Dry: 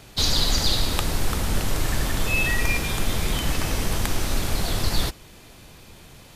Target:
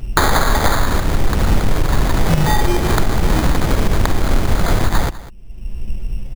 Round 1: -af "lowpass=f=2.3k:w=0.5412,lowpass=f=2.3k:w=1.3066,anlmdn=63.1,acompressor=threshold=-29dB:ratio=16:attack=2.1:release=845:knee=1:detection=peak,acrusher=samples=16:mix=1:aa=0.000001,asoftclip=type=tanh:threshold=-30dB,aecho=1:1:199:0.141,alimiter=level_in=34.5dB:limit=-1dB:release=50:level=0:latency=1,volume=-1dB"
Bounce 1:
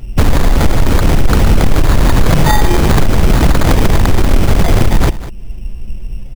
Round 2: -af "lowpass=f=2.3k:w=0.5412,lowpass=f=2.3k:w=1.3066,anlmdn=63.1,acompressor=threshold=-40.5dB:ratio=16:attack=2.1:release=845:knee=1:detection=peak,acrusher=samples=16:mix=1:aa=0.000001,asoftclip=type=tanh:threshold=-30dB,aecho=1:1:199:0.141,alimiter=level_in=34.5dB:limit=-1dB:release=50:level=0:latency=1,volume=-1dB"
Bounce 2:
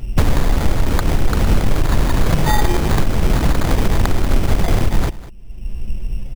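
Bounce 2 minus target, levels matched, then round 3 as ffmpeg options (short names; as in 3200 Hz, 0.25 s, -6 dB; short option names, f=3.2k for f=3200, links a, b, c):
2000 Hz band -3.0 dB
-af "lowpass=f=6.1k:w=0.5412,lowpass=f=6.1k:w=1.3066,anlmdn=63.1,acompressor=threshold=-40.5dB:ratio=16:attack=2.1:release=845:knee=1:detection=peak,acrusher=samples=16:mix=1:aa=0.000001,asoftclip=type=tanh:threshold=-30dB,aecho=1:1:199:0.141,alimiter=level_in=34.5dB:limit=-1dB:release=50:level=0:latency=1,volume=-1dB"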